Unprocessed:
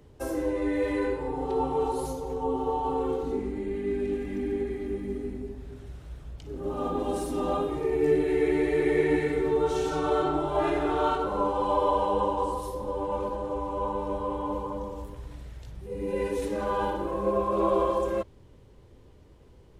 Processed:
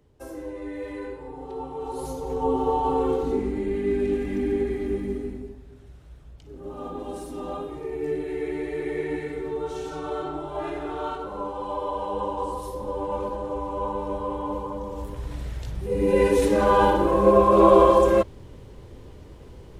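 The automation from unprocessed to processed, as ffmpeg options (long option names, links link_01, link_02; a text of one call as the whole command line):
ffmpeg -i in.wav -af "volume=20dB,afade=type=in:start_time=1.81:duration=0.64:silence=0.251189,afade=type=out:start_time=4.98:duration=0.65:silence=0.316228,afade=type=in:start_time=11.92:duration=0.93:silence=0.473151,afade=type=in:start_time=14.83:duration=0.64:silence=0.375837" out.wav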